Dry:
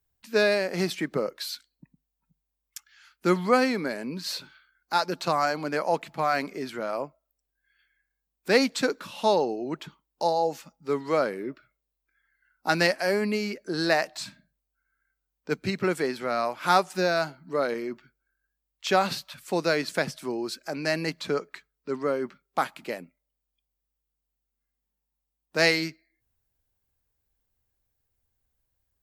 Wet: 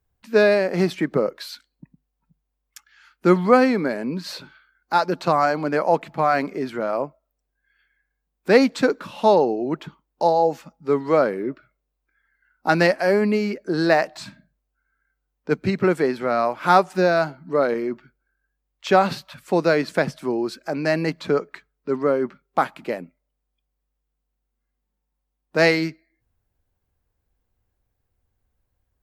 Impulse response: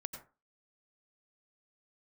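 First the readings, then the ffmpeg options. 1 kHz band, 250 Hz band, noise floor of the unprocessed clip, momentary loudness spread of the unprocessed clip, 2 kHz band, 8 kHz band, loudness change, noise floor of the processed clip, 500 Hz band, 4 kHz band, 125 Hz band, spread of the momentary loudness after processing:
+6.0 dB, +7.5 dB, -83 dBFS, 14 LU, +3.5 dB, no reading, +6.0 dB, -78 dBFS, +7.0 dB, -1.5 dB, +7.5 dB, 13 LU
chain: -af "highshelf=f=2500:g=-12,volume=2.37"

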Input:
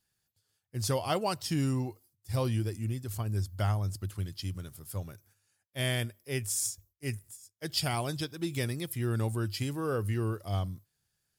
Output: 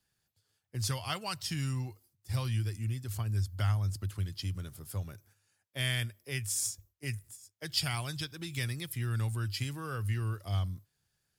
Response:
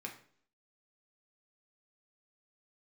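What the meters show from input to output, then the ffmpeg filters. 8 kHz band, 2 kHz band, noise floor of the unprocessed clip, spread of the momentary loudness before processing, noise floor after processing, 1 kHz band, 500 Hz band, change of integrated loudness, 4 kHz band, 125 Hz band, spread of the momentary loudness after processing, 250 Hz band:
-1.0 dB, +0.5 dB, -81 dBFS, 10 LU, -81 dBFS, -5.5 dB, -11.0 dB, -1.5 dB, +0.5 dB, -0.5 dB, 10 LU, -7.5 dB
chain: -filter_complex "[0:a]highshelf=f=6300:g=-5,acrossover=split=140|1200[s0][s1][s2];[s1]acompressor=threshold=0.00501:ratio=10[s3];[s0][s3][s2]amix=inputs=3:normalize=0,volume=1.26"

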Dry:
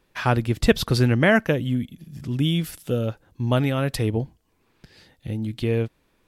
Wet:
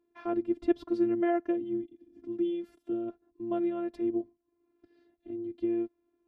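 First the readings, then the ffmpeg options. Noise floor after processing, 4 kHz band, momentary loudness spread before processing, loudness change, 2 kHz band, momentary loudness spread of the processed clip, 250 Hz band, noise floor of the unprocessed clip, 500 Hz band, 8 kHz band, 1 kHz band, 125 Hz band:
-78 dBFS, under -25 dB, 14 LU, -9.0 dB, -22.0 dB, 12 LU, -5.5 dB, -67 dBFS, -7.0 dB, under -30 dB, -10.5 dB, -32.0 dB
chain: -af "afftfilt=real='hypot(re,im)*cos(PI*b)':imag='0':win_size=512:overlap=0.75,bandpass=f=300:t=q:w=1.3:csg=0"

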